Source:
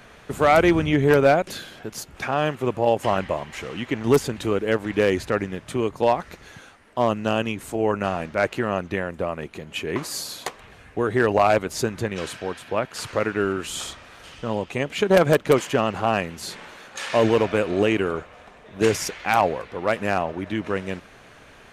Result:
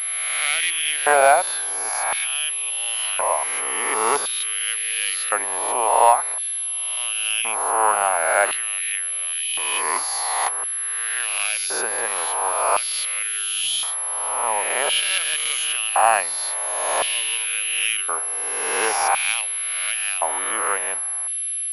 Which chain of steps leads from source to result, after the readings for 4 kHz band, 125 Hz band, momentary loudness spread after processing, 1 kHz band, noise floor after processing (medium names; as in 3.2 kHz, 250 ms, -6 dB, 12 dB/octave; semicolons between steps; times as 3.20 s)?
+9.0 dB, under -30 dB, 5 LU, +4.5 dB, -26 dBFS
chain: reverse spectral sustain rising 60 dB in 1.58 s; LFO high-pass square 0.47 Hz 860–3000 Hz; class-D stage that switches slowly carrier 11 kHz